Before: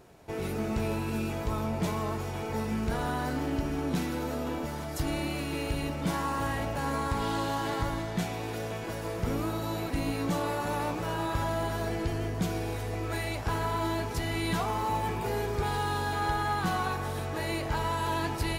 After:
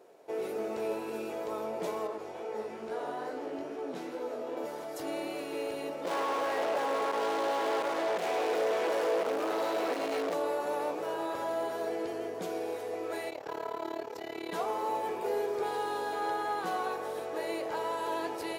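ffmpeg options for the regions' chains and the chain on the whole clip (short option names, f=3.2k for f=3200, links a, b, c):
-filter_complex "[0:a]asettb=1/sr,asplit=3[a][b][c];[a]atrim=end=2.074[d];[b]atrim=start=2.07:end=4.57,asetpts=PTS-STARTPTS,afade=t=in:d=0.004:c=qsin,afade=t=out:st=2.496:d=0.004:c=qsin,highshelf=f=11k:g=-11.5,flanger=delay=16:depth=5.6:speed=2.3[e];[c]atrim=start=4.566[f];[d][e]acrossfade=d=0.004:c1=hsin:c2=qsin[g];[g][f]acrossfade=d=0.004:c1=qsin:c2=hsin,asettb=1/sr,asplit=3[h][i][j];[h]atrim=end=6.054[k];[i]atrim=start=6.05:end=10.34,asetpts=PTS-STARTPTS,afade=t=in:d=0.004:c=qsin,afade=t=out:st=4.286:d=0.004:c=qsin,asoftclip=type=hard:threshold=-36.5dB,asplit=2[l][m];[m]highpass=f=720:p=1,volume=31dB,asoftclip=type=tanh:threshold=-21dB[n];[l][n]amix=inputs=2:normalize=0,lowpass=f=2.8k:p=1,volume=-6dB[o];[j]atrim=start=10.336[p];[k][o]acrossfade=d=0.004:c1=hsin:c2=qsin[q];[q][p]acrossfade=d=0.004:c1=qsin:c2=hsin,asettb=1/sr,asplit=3[r][s][t];[r]atrim=end=13.304[u];[s]atrim=start=13.3:end=14.53,asetpts=PTS-STARTPTS,afade=t=in:d=0.004:c=qsin,afade=t=out:st=1.226:d=0.004:c=qsin,equalizer=f=9.6k:t=o:w=0.44:g=-12,tremolo=f=36:d=0.889[v];[t]atrim=start=14.526[w];[u][v]acrossfade=d=0.004:c1=hsin:c2=qsin[x];[x][w]acrossfade=d=0.004:c1=qsin:c2=hsin,highpass=360,equalizer=f=480:t=o:w=1.3:g=12,volume=-7dB"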